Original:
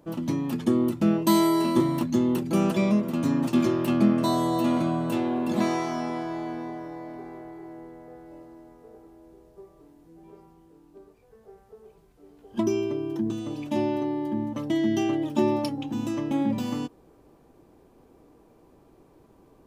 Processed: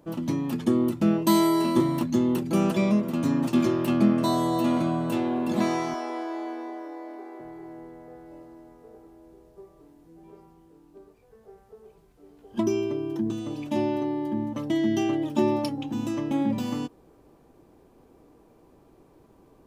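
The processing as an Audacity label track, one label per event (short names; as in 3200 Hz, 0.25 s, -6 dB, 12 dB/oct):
5.940000	7.400000	elliptic high-pass 290 Hz, stop band 50 dB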